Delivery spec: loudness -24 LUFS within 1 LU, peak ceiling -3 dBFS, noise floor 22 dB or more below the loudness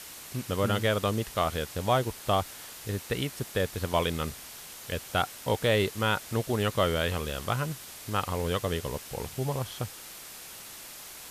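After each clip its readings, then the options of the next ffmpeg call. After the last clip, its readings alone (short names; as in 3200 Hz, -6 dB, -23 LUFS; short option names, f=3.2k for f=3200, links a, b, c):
noise floor -45 dBFS; noise floor target -52 dBFS; loudness -30.0 LUFS; peak -11.0 dBFS; loudness target -24.0 LUFS
-> -af "afftdn=nr=7:nf=-45"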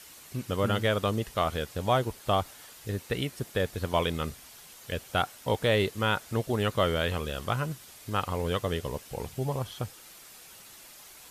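noise floor -50 dBFS; noise floor target -52 dBFS
-> -af "afftdn=nr=6:nf=-50"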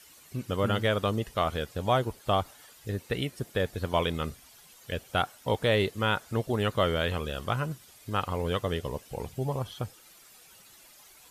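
noise floor -55 dBFS; loudness -30.0 LUFS; peak -11.0 dBFS; loudness target -24.0 LUFS
-> -af "volume=6dB"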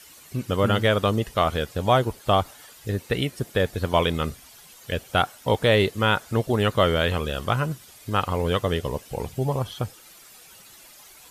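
loudness -24.0 LUFS; peak -5.0 dBFS; noise floor -49 dBFS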